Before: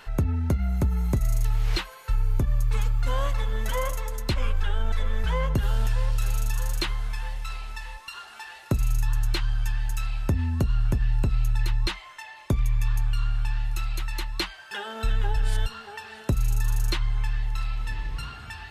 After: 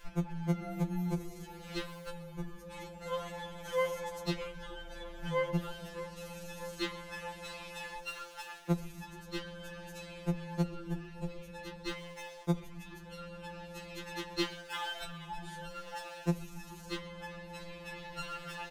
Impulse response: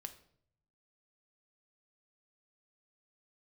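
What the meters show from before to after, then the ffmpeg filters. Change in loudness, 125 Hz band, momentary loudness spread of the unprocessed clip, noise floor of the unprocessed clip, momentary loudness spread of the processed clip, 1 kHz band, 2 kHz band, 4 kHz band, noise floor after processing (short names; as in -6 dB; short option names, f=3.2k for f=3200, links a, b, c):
-11.5 dB, -13.5 dB, 10 LU, -46 dBFS, 11 LU, -6.0 dB, -6.5 dB, -8.0 dB, -50 dBFS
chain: -filter_complex "[0:a]acrossover=split=7200[a][b];[b]acompressor=threshold=-49dB:ratio=4:attack=1:release=60[c];[a][c]amix=inputs=2:normalize=0,lowshelf=f=82:g=9,acompressor=threshold=-23dB:ratio=4,aeval=exprs='sgn(val(0))*max(abs(val(0))-0.00398,0)':c=same,asplit=6[d][e][f][g][h][i];[e]adelay=132,afreqshift=-140,volume=-19dB[j];[f]adelay=264,afreqshift=-280,volume=-24dB[k];[g]adelay=396,afreqshift=-420,volume=-29.1dB[l];[h]adelay=528,afreqshift=-560,volume=-34.1dB[m];[i]adelay=660,afreqshift=-700,volume=-39.1dB[n];[d][j][k][l][m][n]amix=inputs=6:normalize=0,asplit=2[o][p];[1:a]atrim=start_sample=2205[q];[p][q]afir=irnorm=-1:irlink=0,volume=2dB[r];[o][r]amix=inputs=2:normalize=0,afftfilt=real='re*2.83*eq(mod(b,8),0)':imag='im*2.83*eq(mod(b,8),0)':win_size=2048:overlap=0.75,volume=-3.5dB"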